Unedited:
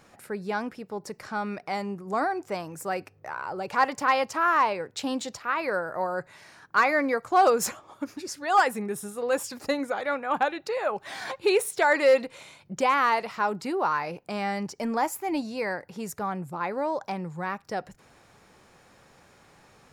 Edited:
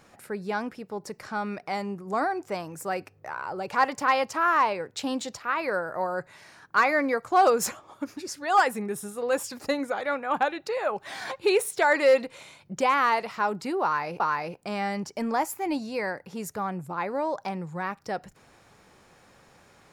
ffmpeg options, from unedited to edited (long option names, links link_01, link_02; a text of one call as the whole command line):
ffmpeg -i in.wav -filter_complex "[0:a]asplit=2[link_01][link_02];[link_01]atrim=end=14.202[link_03];[link_02]atrim=start=13.828[link_04];[link_03][link_04]acrossfade=duration=0.004:curve1=hsin:curve2=hsin" out.wav